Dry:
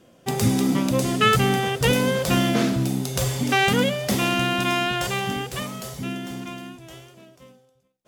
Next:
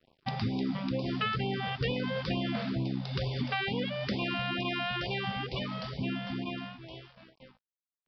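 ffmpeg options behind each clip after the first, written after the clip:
-af "acompressor=threshold=0.0398:ratio=6,aresample=11025,aeval=exprs='sgn(val(0))*max(abs(val(0))-0.00299,0)':c=same,aresample=44100,afftfilt=real='re*(1-between(b*sr/1024,300*pow(1600/300,0.5+0.5*sin(2*PI*2.2*pts/sr))/1.41,300*pow(1600/300,0.5+0.5*sin(2*PI*2.2*pts/sr))*1.41))':imag='im*(1-between(b*sr/1024,300*pow(1600/300,0.5+0.5*sin(2*PI*2.2*pts/sr))/1.41,300*pow(1600/300,0.5+0.5*sin(2*PI*2.2*pts/sr))*1.41))':win_size=1024:overlap=0.75"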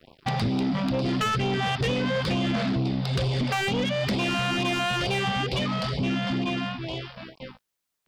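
-filter_complex "[0:a]asplit=2[s0][s1];[s1]acompressor=threshold=0.01:ratio=6,volume=1[s2];[s0][s2]amix=inputs=2:normalize=0,asoftclip=type=tanh:threshold=0.0335,volume=2.66"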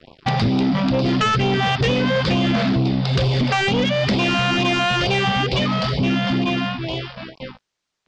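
-af "lowpass=f=6600:w=0.5412,lowpass=f=6600:w=1.3066,volume=2.24"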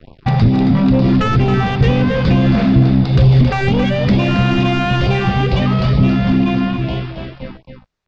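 -filter_complex "[0:a]aemphasis=mode=reproduction:type=bsi,bandreject=f=3100:w=21,asplit=2[s0][s1];[s1]aecho=0:1:272:0.422[s2];[s0][s2]amix=inputs=2:normalize=0"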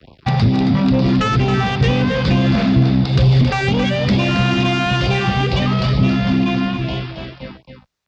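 -filter_complex "[0:a]highpass=48,highshelf=f=3100:g=9.5,acrossover=split=290|680|1000[s0][s1][s2][s3];[s2]crystalizer=i=8:c=0[s4];[s0][s1][s4][s3]amix=inputs=4:normalize=0,volume=0.75"

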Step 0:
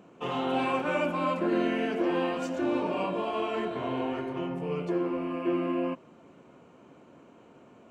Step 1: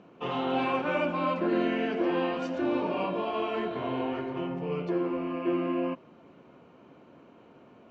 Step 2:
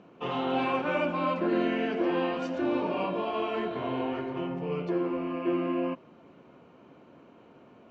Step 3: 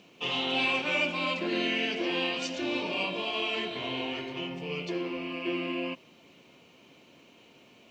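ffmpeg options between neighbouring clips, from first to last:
-af "lowpass=f=5300:w=0.5412,lowpass=f=5300:w=1.3066"
-af anull
-af "aexciter=amount=5:drive=7.8:freq=2100,volume=0.596"

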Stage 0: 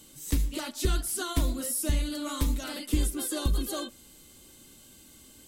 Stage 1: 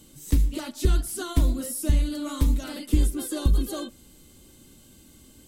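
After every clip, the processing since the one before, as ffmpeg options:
-af "lowshelf=f=430:g=8.5,volume=0.794"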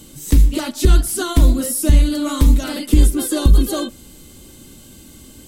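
-af "alimiter=level_in=3.76:limit=0.891:release=50:level=0:latency=1,volume=0.891"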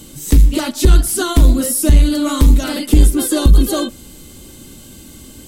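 -af "asoftclip=type=tanh:threshold=0.631,volume=1.58"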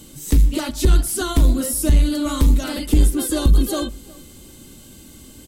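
-filter_complex "[0:a]asplit=2[s0][s1];[s1]adelay=361.5,volume=0.0794,highshelf=f=4000:g=-8.13[s2];[s0][s2]amix=inputs=2:normalize=0,volume=0.562"

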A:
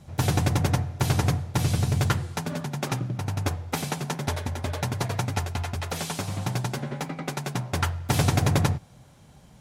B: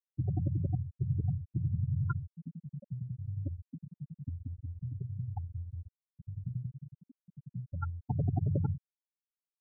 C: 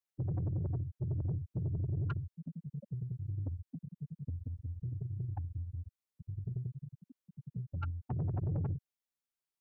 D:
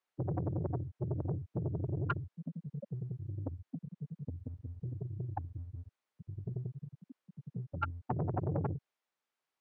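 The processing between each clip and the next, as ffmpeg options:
-af "acrusher=bits=5:mode=log:mix=0:aa=0.000001,afftfilt=real='re*gte(hypot(re,im),0.282)':imag='im*gte(hypot(re,im),0.282)':win_size=1024:overlap=0.75,volume=0.447"
-filter_complex "[0:a]acrossover=split=200|220|720[s0][s1][s2][s3];[s2]alimiter=level_in=4.73:limit=0.0631:level=0:latency=1:release=182,volume=0.211[s4];[s0][s1][s4][s3]amix=inputs=4:normalize=0,asoftclip=type=tanh:threshold=0.0282,volume=1.12"
-af "bandpass=f=940:t=q:w=0.52:csg=0,volume=3.55"

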